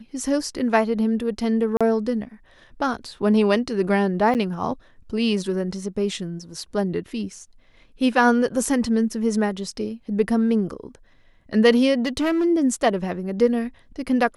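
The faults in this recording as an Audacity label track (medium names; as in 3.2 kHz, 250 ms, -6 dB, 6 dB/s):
1.770000	1.810000	dropout 36 ms
4.340000	4.350000	dropout 8.8 ms
12.050000	12.450000	clipped -17.5 dBFS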